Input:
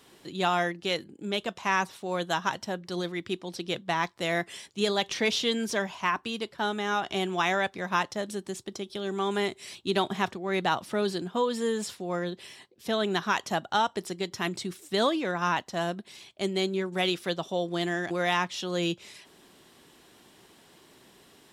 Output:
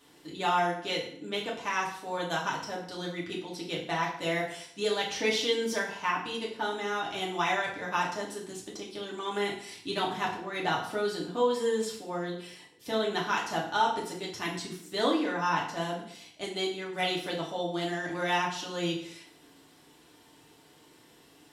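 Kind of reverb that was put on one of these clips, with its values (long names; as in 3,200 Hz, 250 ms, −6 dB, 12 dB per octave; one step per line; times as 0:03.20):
feedback delay network reverb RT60 0.63 s, low-frequency decay 0.95×, high-frequency decay 0.85×, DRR −4 dB
level −7 dB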